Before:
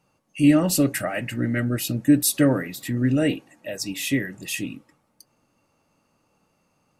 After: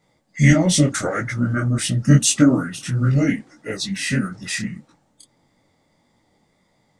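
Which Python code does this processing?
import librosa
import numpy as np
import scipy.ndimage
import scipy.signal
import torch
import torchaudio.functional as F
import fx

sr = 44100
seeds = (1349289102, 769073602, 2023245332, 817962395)

y = fx.formant_shift(x, sr, semitones=-5)
y = fx.detune_double(y, sr, cents=56)
y = F.gain(torch.from_numpy(y), 8.0).numpy()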